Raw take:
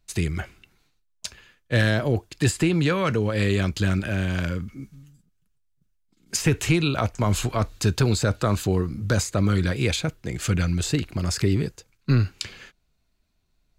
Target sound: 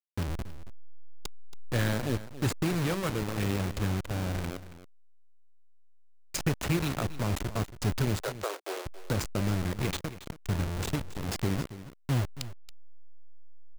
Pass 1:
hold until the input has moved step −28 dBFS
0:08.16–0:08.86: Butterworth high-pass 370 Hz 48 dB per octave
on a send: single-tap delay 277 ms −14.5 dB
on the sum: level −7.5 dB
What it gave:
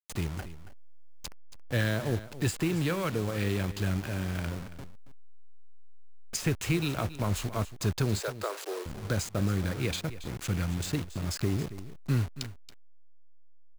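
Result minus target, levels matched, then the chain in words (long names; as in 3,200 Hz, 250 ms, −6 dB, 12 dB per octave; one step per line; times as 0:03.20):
hold until the input has moved: distortion −8 dB
hold until the input has moved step −19 dBFS
0:08.16–0:08.86: Butterworth high-pass 370 Hz 48 dB per octave
on a send: single-tap delay 277 ms −14.5 dB
on the sum: level −7.5 dB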